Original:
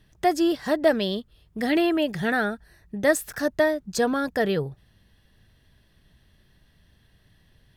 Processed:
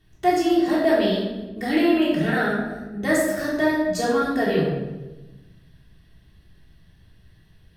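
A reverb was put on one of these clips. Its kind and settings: simulated room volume 580 m³, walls mixed, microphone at 3.4 m; trim -6 dB

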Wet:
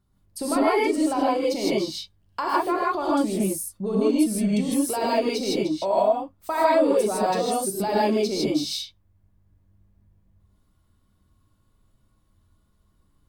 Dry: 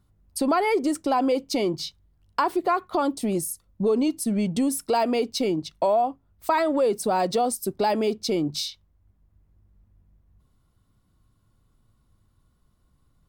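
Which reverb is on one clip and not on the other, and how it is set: gated-style reverb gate 180 ms rising, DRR -6.5 dB; trim -6 dB

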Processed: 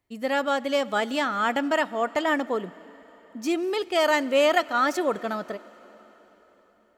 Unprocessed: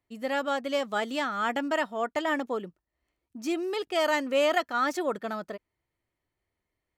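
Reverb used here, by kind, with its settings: plate-style reverb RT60 4.6 s, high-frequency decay 0.9×, DRR 18.5 dB; trim +4 dB

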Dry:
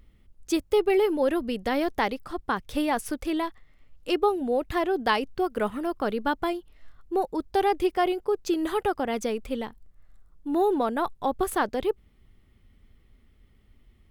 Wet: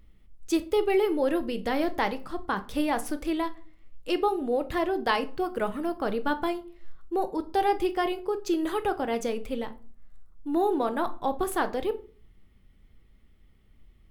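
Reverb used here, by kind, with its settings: simulated room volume 310 m³, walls furnished, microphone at 0.63 m; trim -2 dB

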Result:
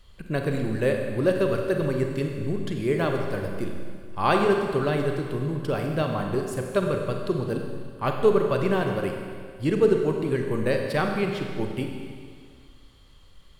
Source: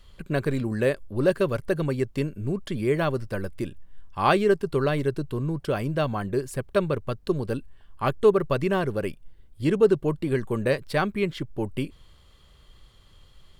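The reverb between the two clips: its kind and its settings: Schroeder reverb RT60 2 s, combs from 32 ms, DRR 2.5 dB; trim -1.5 dB

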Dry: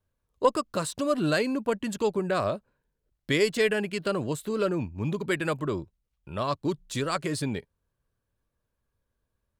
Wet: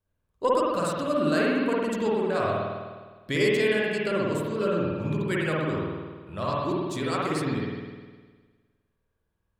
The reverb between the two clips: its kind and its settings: spring tank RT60 1.5 s, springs 51 ms, chirp 80 ms, DRR -5 dB; trim -4 dB

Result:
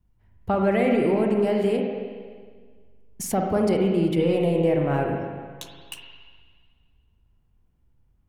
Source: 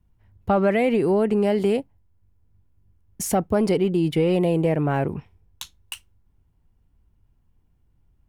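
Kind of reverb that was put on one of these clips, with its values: spring tank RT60 1.7 s, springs 42/46/58 ms, chirp 60 ms, DRR 1 dB; trim -3.5 dB

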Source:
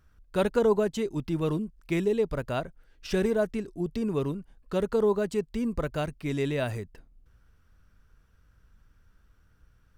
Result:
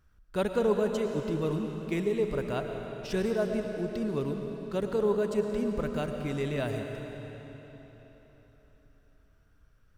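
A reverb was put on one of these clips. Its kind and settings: algorithmic reverb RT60 4 s, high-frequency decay 0.9×, pre-delay 70 ms, DRR 4 dB; trim -3.5 dB

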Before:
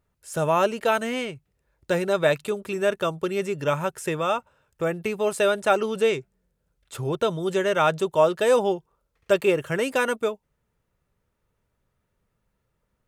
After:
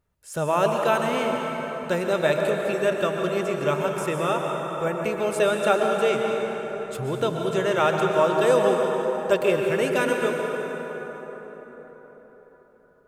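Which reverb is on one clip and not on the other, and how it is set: plate-style reverb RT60 4.9 s, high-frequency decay 0.5×, pre-delay 105 ms, DRR 1 dB; trim -1.5 dB

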